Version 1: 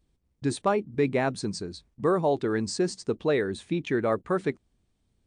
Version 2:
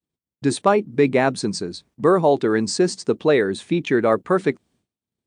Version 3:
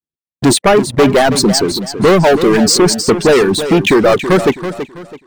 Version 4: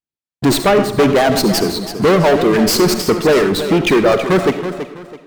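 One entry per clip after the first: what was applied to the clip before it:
expander -58 dBFS; HPF 140 Hz 12 dB/oct; gain +8 dB
sample leveller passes 5; reverb removal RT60 1.2 s; warbling echo 0.328 s, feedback 31%, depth 55 cents, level -10.5 dB; gain -1 dB
reverb RT60 0.65 s, pre-delay 30 ms, DRR 8 dB; running maximum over 3 samples; gain -3 dB

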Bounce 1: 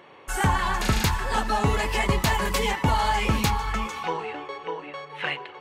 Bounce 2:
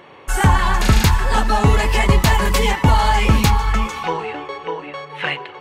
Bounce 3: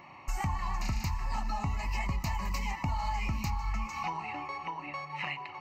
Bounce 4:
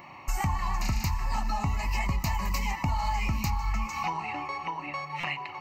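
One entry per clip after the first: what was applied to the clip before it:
low shelf 120 Hz +7 dB; gain +6 dB
compressor 5:1, threshold -25 dBFS, peak gain reduction 15 dB; fixed phaser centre 2300 Hz, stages 8; gain -4.5 dB
high shelf 11000 Hz +9.5 dB; stuck buffer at 5.2, samples 256, times 5; gain +4 dB

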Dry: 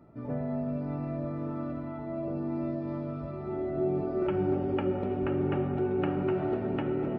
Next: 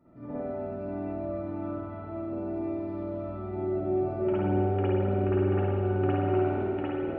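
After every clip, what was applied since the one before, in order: spring tank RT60 1.4 s, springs 51 ms, chirp 45 ms, DRR -9.5 dB; gain -9 dB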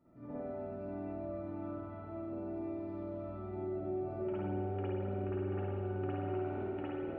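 compressor 2:1, threshold -29 dBFS, peak gain reduction 5 dB; gain -7 dB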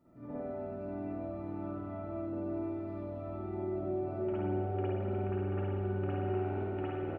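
echo 0.796 s -7 dB; gain +2 dB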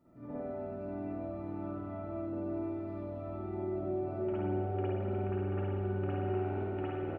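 nothing audible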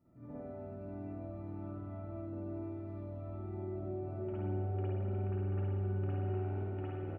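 bell 93 Hz +9 dB 1.9 oct; gain -7.5 dB

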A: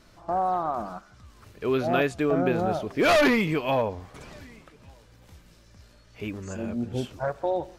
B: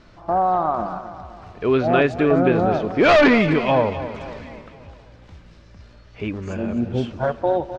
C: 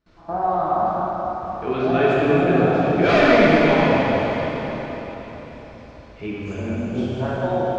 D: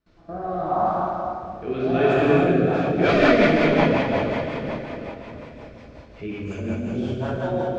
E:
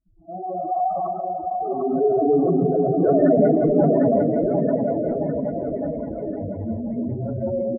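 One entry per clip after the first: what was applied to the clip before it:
air absorption 150 m; feedback echo 0.257 s, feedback 49%, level -12.5 dB; gain +7 dB
gate with hold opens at -41 dBFS; plate-style reverb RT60 4.4 s, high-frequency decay 0.95×, DRR -7.5 dB; gain -7.5 dB
rotary speaker horn 0.75 Hz, later 5.5 Hz, at 2.29
spectral contrast raised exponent 3.5; brick-wall FIR low-pass 2200 Hz; bouncing-ball echo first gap 0.75 s, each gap 0.9×, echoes 5

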